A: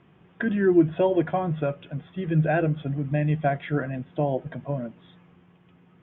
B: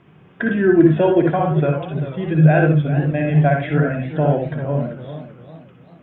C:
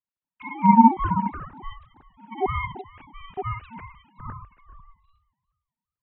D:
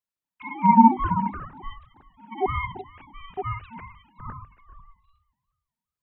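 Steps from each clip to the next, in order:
on a send at −2 dB: convolution reverb RT60 0.20 s, pre-delay 52 ms; on the sum: feedback echo with a swinging delay time 394 ms, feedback 39%, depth 131 cents, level −12 dB; level +5 dB
three sine waves on the formant tracks; ring modulation 570 Hz; multiband upward and downward expander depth 70%; level −10 dB
mains-hum notches 50/100/150/200/250/300 Hz

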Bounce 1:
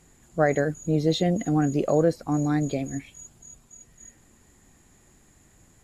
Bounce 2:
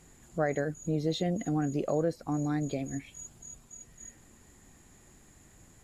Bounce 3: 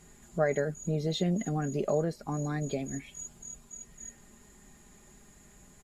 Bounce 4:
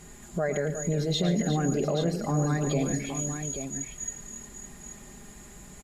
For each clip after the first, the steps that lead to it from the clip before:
downward compressor 1.5 to 1, threshold −39 dBFS, peak gain reduction 8.5 dB
comb filter 4.9 ms, depth 55%
brickwall limiter −27.5 dBFS, peak gain reduction 11.5 dB; on a send: multi-tap delay 110/143/359/832 ms −11.5/−16.5/−10.5/−8 dB; on the sum: level +8 dB

